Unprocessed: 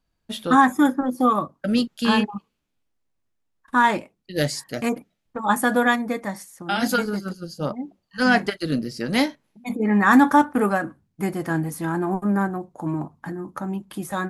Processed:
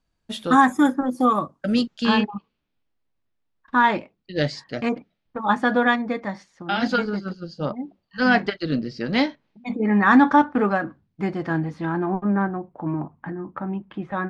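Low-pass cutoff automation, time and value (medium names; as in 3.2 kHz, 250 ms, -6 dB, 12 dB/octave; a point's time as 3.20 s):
low-pass 24 dB/octave
1.56 s 10 kHz
2.30 s 4.7 kHz
11.46 s 4.7 kHz
12.74 s 2.8 kHz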